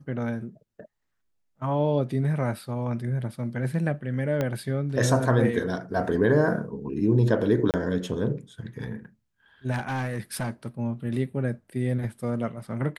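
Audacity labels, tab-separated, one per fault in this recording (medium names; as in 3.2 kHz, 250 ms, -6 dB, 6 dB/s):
4.410000	4.410000	pop -14 dBFS
7.710000	7.740000	dropout 28 ms
9.710000	10.660000	clipped -24.5 dBFS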